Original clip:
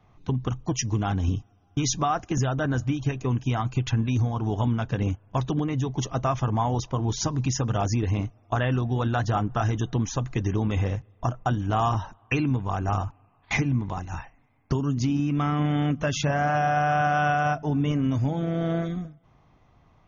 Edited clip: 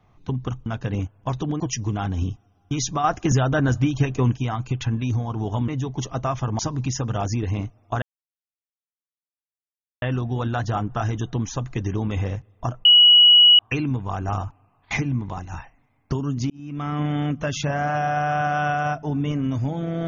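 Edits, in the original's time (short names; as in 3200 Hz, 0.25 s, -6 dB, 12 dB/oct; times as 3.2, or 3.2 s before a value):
2.1–3.42 gain +5.5 dB
4.74–5.68 move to 0.66
6.59–7.19 cut
8.62 insert silence 2.00 s
11.45–12.19 bleep 2920 Hz -8.5 dBFS
15.1–15.6 fade in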